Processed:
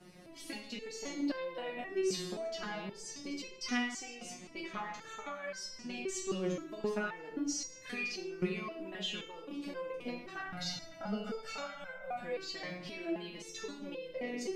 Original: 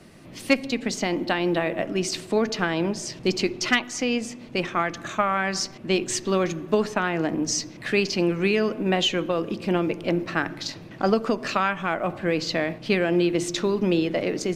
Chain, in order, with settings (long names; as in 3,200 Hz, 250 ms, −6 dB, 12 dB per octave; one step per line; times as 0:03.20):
0:10.39–0:12.20: comb filter 1.4 ms, depth 91%
downward compressor, threshold −27 dBFS, peak gain reduction 13 dB
convolution reverb RT60 0.70 s, pre-delay 35 ms, DRR 3.5 dB
step-sequenced resonator 3.8 Hz 180–520 Hz
level +4.5 dB